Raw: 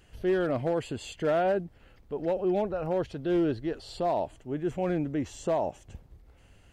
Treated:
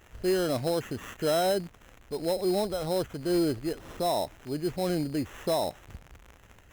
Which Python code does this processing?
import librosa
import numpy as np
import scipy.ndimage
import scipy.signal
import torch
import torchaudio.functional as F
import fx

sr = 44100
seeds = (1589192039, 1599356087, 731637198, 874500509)

y = fx.dmg_crackle(x, sr, seeds[0], per_s=480.0, level_db=-41.0)
y = fx.sample_hold(y, sr, seeds[1], rate_hz=4600.0, jitter_pct=0)